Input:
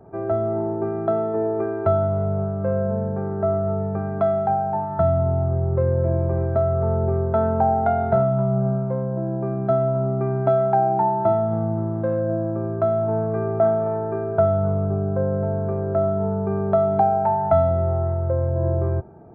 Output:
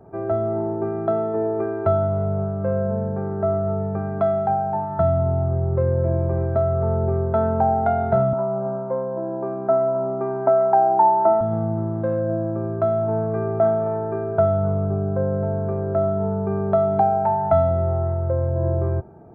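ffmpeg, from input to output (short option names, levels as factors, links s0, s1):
-filter_complex "[0:a]asettb=1/sr,asplit=3[s0][s1][s2];[s0]atrim=end=8.334[s3];[s1]atrim=start=8.33:end=11.41,asetpts=PTS-STARTPTS,afade=t=in:d=0.004:c=qsin,afade=t=out:st=3.076:d=0.004:c=qsin,highpass=f=180:w=0.5412,highpass=f=180:w=1.3066,equalizer=f=180:t=q:w=4:g=-9,equalizer=f=550:t=q:w=4:g=4,equalizer=f=960:t=q:w=4:g=8,lowpass=f=2100:w=0.5412,lowpass=f=2100:w=1.3066[s4];[s2]atrim=start=11.406[s5];[s3][s4]acrossfade=d=0.004:c1=hsin:c2=qsin[s6];[s6][s5]acrossfade=d=0.004:c1=qsin:c2=hsin"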